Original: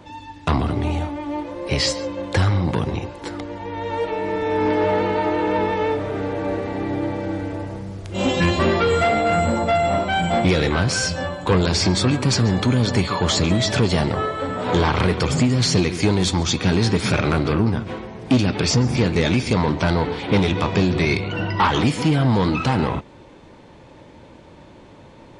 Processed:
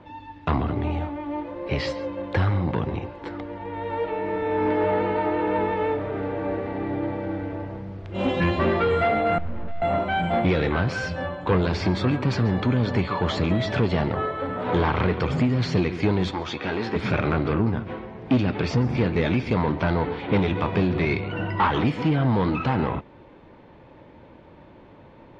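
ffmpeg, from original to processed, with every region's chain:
-filter_complex "[0:a]asettb=1/sr,asplit=3[s0][s1][s2];[s0]atrim=end=9.384[s3];[s1]atrim=start=9.38:end=9.82,asetpts=PTS-STARTPTS,afade=t=in:d=0.004:c=qsin,afade=t=out:st=0.436:d=0.004:c=qsin,aeval=exprs='(tanh(70.8*val(0)+0.6)-tanh(0.6))/70.8':c=same,aemphasis=mode=reproduction:type=riaa,aeval=exprs='abs(val(0))':c=same[s4];[s2]atrim=start=9.816[s5];[s3][s4]acrossfade=d=0.004:c1=hsin:c2=qsin[s6];[s6][s5]acrossfade=d=0.004:c1=qsin:c2=hsin,asettb=1/sr,asplit=3[s7][s8][s9];[s7]atrim=end=16.314[s10];[s8]atrim=start=16.31:end=16.96,asetpts=PTS-STARTPTS,afade=t=in:d=0.004:c=qsin,afade=t=out:st=0.646:d=0.004:c=qsin,bass=f=250:g=-12,treble=f=4000:g=-3,asplit=2[s11][s12];[s12]adelay=14,volume=0.398[s13];[s11][s13]amix=inputs=2:normalize=0,atrim=end_sample=28665[s14];[s9]atrim=start=16.956[s15];[s10][s14]acrossfade=d=0.004:c1=hsin:c2=qsin[s16];[s16][s15]acrossfade=d=0.004:c1=qsin:c2=hsin,lowpass=5100,bass=f=250:g=-1,treble=f=4000:g=-15,volume=0.708"

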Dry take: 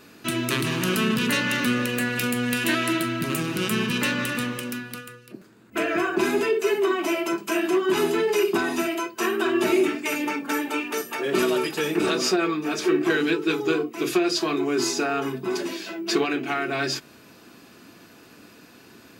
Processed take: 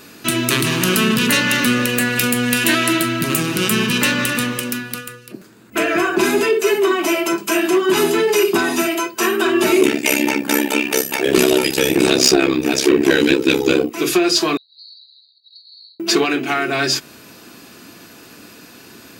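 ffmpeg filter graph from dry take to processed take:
-filter_complex "[0:a]asettb=1/sr,asplit=3[s0][s1][s2];[s0]atrim=end=9.814[s3];[s1]atrim=start=9.81:end=13.9,asetpts=PTS-STARTPTS,afade=t=in:d=0.004:c=qsin,afade=t=out:st=4.086:d=0.004:c=qsin,equalizer=f=1200:t=o:w=0.58:g=-10.5,acontrast=90,tremolo=f=67:d=0.947[s4];[s2]atrim=start=13.896[s5];[s3][s4]acrossfade=d=0.004:c1=hsin:c2=qsin[s6];[s6][s5]acrossfade=d=0.004:c1=qsin:c2=hsin,asettb=1/sr,asplit=3[s7][s8][s9];[s7]atrim=end=14.574[s10];[s8]atrim=start=14.57:end=16,asetpts=PTS-STARTPTS,afade=t=in:d=0.004:c=qsin,afade=t=out:st=1.426:d=0.004:c=qsin,asuperpass=centerf=4200:order=12:qfactor=5.8,acompressor=threshold=0.00282:ratio=3:attack=3.2:release=140:knee=1:detection=peak[s11];[s9]atrim=start=15.996[s12];[s10][s11]acrossfade=d=0.004:c1=hsin:c2=qsin[s13];[s13][s12]acrossfade=d=0.004:c1=qsin:c2=hsin,highshelf=f=4000:g=6.5,acontrast=67"

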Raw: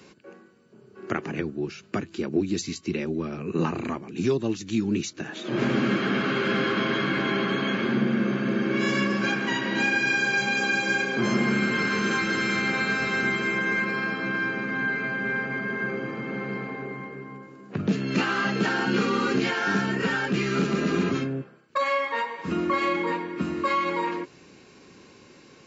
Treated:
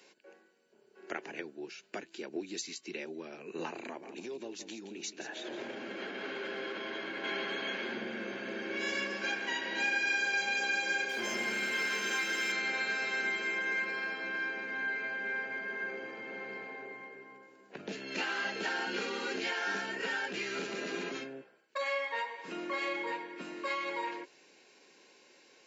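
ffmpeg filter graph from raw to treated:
-filter_complex "[0:a]asettb=1/sr,asplit=3[s0][s1][s2];[s0]atrim=end=3.864[s3];[s1]atrim=start=3.86:end=7.24,asetpts=PTS-STARTPTS,afade=t=in:d=0.004:c=qsin,afade=t=out:st=3.376:d=0.004:c=qsin,equalizer=f=380:w=0.34:g=5.5,acompressor=threshold=0.0631:ratio=12:attack=3.2:release=140:knee=1:detection=peak,aecho=1:1:170:0.282,atrim=end_sample=149058[s4];[s2]atrim=start=7.236[s5];[s3][s4]acrossfade=d=0.004:c1=hsin:c2=qsin[s6];[s6][s5]acrossfade=d=0.004:c1=qsin:c2=hsin,asettb=1/sr,asplit=3[s7][s8][s9];[s7]atrim=end=11.094[s10];[s8]atrim=start=11.09:end=12.52,asetpts=PTS-STARTPTS,afade=t=in:d=0.004:c=qsin,afade=t=out:st=1.426:d=0.004:c=qsin,highshelf=f=2900:g=6.5,bandreject=f=4200:w=27,aeval=exprs='sgn(val(0))*max(abs(val(0))-0.0075,0)':c=same[s11];[s9]atrim=start=12.516[s12];[s10][s11]acrossfade=d=0.004:c1=hsin:c2=qsin[s13];[s13][s12]acrossfade=d=0.004:c1=qsin:c2=hsin,highpass=520,equalizer=f=1200:w=4.8:g=-13,volume=0.531"

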